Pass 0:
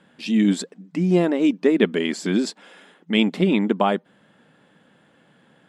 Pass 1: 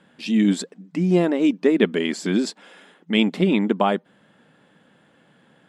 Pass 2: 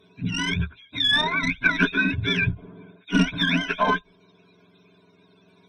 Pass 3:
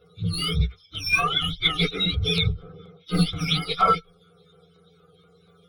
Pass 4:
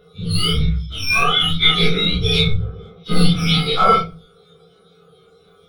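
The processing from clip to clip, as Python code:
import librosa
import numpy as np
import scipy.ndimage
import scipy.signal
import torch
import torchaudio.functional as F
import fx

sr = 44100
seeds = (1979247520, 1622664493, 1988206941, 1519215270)

y1 = x
y2 = fx.octave_mirror(y1, sr, pivot_hz=790.0)
y2 = fx.tube_stage(y2, sr, drive_db=12.0, bias=0.4)
y2 = fx.ripple_eq(y2, sr, per_octave=1.6, db=16)
y3 = fx.partial_stretch(y2, sr, pct=118)
y3 = fx.fixed_phaser(y3, sr, hz=1300.0, stages=8)
y3 = fx.filter_lfo_notch(y3, sr, shape='saw_down', hz=4.2, low_hz=500.0, high_hz=7400.0, q=1.0)
y3 = F.gain(torch.from_numpy(y3), 8.5).numpy()
y4 = fx.spec_dilate(y3, sr, span_ms=60)
y4 = fx.room_shoebox(y4, sr, seeds[0], volume_m3=150.0, walls='furnished', distance_m=1.4)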